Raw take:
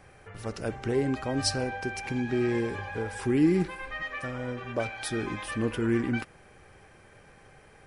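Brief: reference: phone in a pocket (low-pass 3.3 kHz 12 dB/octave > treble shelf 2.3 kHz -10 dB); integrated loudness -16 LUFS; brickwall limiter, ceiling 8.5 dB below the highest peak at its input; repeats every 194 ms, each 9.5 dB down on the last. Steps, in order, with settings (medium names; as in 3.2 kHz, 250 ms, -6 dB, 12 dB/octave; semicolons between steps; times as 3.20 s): peak limiter -22 dBFS; low-pass 3.3 kHz 12 dB/octave; treble shelf 2.3 kHz -10 dB; feedback delay 194 ms, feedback 33%, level -9.5 dB; trim +17 dB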